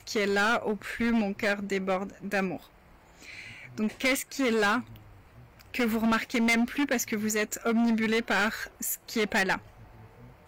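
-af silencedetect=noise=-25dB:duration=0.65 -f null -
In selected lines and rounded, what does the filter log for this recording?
silence_start: 2.54
silence_end: 3.79 | silence_duration: 1.25
silence_start: 4.79
silence_end: 5.74 | silence_duration: 0.96
silence_start: 9.55
silence_end: 10.48 | silence_duration: 0.93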